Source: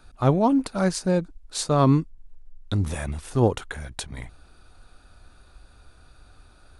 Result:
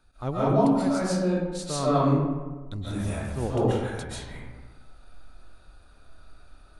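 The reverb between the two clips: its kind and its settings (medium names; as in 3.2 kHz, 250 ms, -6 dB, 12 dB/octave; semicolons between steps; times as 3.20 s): algorithmic reverb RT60 1.3 s, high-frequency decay 0.5×, pre-delay 100 ms, DRR -9.5 dB; trim -11.5 dB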